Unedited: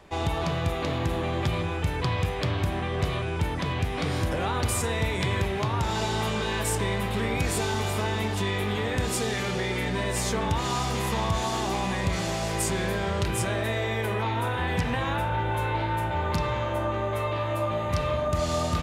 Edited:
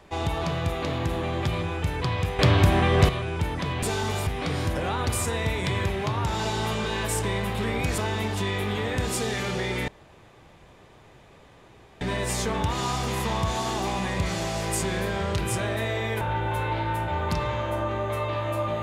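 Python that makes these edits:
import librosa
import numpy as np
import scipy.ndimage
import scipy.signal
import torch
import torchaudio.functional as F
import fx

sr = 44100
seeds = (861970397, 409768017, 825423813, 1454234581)

y = fx.edit(x, sr, fx.clip_gain(start_s=2.39, length_s=0.7, db=8.5),
    fx.move(start_s=7.54, length_s=0.44, to_s=3.83),
    fx.insert_room_tone(at_s=9.88, length_s=2.13),
    fx.cut(start_s=14.08, length_s=1.16), tone=tone)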